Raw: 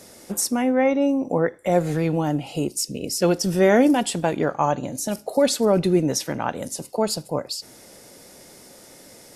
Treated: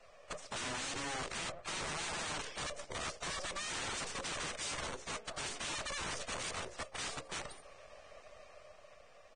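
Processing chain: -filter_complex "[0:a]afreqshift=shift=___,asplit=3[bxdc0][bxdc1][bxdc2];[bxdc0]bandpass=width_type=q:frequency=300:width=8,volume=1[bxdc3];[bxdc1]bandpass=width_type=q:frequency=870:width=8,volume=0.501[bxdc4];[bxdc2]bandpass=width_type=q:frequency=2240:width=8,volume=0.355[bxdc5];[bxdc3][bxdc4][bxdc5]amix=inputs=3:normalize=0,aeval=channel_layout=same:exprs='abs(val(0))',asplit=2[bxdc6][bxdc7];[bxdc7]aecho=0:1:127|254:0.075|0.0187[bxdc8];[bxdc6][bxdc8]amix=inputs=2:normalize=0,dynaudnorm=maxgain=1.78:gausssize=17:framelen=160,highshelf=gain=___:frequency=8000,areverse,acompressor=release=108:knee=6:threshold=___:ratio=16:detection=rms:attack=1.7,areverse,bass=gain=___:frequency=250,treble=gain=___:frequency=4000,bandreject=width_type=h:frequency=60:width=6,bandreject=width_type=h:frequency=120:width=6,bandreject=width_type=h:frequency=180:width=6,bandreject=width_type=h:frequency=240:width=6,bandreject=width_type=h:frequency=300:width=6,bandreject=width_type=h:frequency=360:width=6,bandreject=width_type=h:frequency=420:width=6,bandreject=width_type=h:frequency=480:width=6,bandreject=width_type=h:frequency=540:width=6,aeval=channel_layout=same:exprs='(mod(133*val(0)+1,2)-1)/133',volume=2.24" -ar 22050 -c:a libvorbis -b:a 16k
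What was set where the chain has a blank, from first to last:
-73, -10.5, 0.0282, -11, 1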